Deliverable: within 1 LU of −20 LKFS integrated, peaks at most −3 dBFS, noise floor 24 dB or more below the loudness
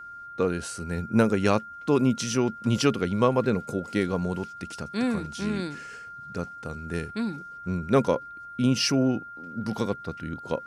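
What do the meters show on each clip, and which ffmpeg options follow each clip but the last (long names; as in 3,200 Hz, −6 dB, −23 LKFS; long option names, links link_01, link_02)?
interfering tone 1,400 Hz; level of the tone −39 dBFS; integrated loudness −27.0 LKFS; sample peak −7.5 dBFS; target loudness −20.0 LKFS
→ -af "bandreject=frequency=1400:width=30"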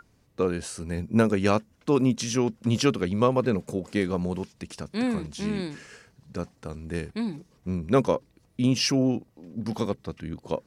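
interfering tone none found; integrated loudness −27.0 LKFS; sample peak −7.5 dBFS; target loudness −20.0 LKFS
→ -af "volume=7dB,alimiter=limit=-3dB:level=0:latency=1"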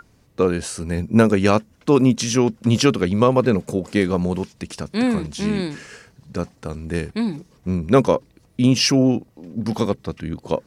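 integrated loudness −20.0 LKFS; sample peak −3.0 dBFS; background noise floor −57 dBFS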